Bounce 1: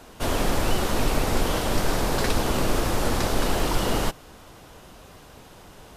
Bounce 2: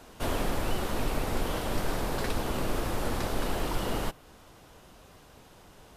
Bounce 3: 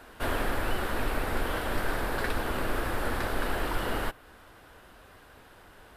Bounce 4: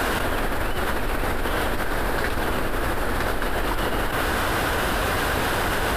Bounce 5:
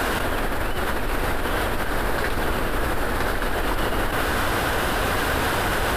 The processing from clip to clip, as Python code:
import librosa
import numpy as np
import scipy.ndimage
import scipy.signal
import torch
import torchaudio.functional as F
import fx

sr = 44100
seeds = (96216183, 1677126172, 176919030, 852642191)

y1 = fx.dynamic_eq(x, sr, hz=6100.0, q=1.0, threshold_db=-47.0, ratio=4.0, max_db=-4)
y1 = fx.rider(y1, sr, range_db=10, speed_s=0.5)
y1 = F.gain(torch.from_numpy(y1), -6.5).numpy()
y2 = fx.graphic_eq_15(y1, sr, hz=(160, 1600, 6300), db=(-7, 8, -8))
y3 = fx.env_flatten(y2, sr, amount_pct=100)
y4 = y3 + 10.0 ** (-8.5 / 20.0) * np.pad(y3, (int(1110 * sr / 1000.0), 0))[:len(y3)]